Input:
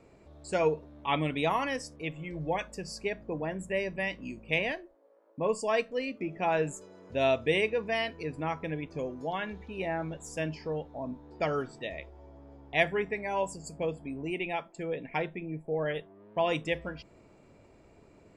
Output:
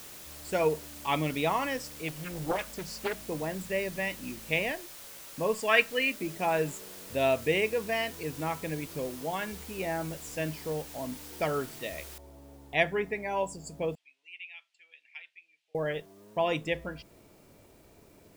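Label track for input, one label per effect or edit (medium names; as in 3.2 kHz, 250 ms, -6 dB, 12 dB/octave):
2.080000	3.250000	loudspeaker Doppler distortion depth 0.72 ms
5.560000	6.150000	high-order bell 2.1 kHz +11.5 dB
7.250000	8.410000	band-stop 3.5 kHz, Q 7.7
12.180000	12.180000	noise floor step -47 dB -66 dB
13.950000	15.750000	ladder band-pass 3.1 kHz, resonance 50%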